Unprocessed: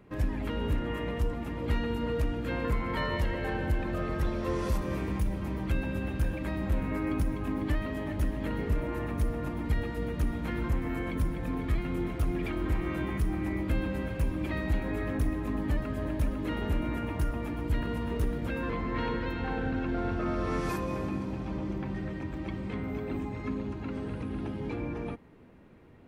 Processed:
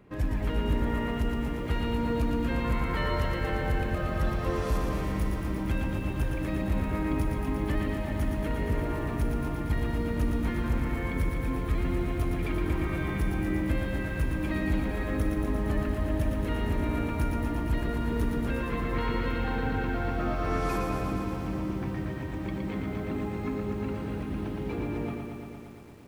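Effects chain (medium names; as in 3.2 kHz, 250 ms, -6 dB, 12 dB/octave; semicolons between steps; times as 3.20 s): bit-crushed delay 116 ms, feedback 80%, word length 10-bit, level -5 dB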